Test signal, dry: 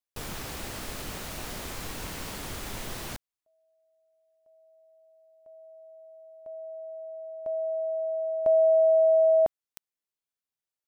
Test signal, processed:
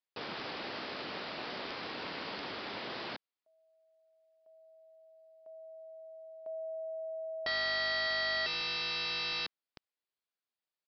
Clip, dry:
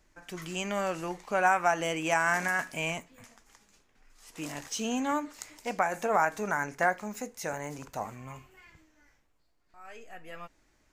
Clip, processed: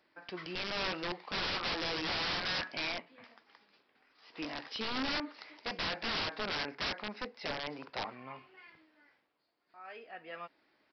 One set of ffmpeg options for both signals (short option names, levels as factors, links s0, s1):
-af "highpass=270,aresample=11025,aeval=exprs='(mod(29.9*val(0)+1,2)-1)/29.9':c=same,aresample=44100"